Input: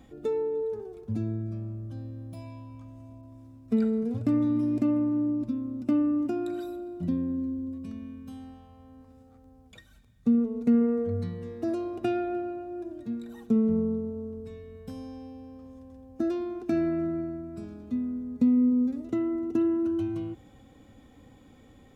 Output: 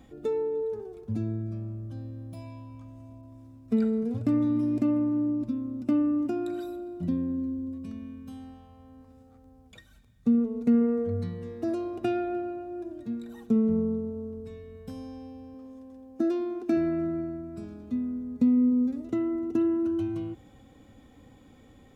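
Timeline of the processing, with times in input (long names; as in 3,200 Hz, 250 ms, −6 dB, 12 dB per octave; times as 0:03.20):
0:15.54–0:16.77: low shelf with overshoot 180 Hz −9 dB, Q 1.5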